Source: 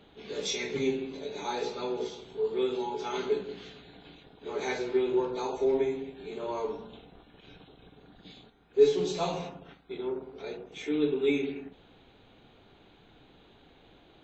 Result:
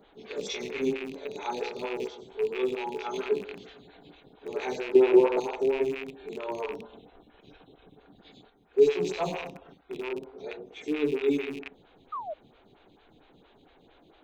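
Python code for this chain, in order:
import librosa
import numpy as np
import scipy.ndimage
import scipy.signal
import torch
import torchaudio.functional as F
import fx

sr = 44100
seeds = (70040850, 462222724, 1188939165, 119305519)

y = fx.rattle_buzz(x, sr, strikes_db=-44.0, level_db=-26.0)
y = fx.peak_eq(y, sr, hz=620.0, db=10.5, octaves=2.4, at=(4.95, 5.4))
y = fx.spec_paint(y, sr, seeds[0], shape='fall', start_s=12.12, length_s=0.22, low_hz=570.0, high_hz=1300.0, level_db=-35.0)
y = fx.stagger_phaser(y, sr, hz=4.4)
y = y * 10.0 ** (2.0 / 20.0)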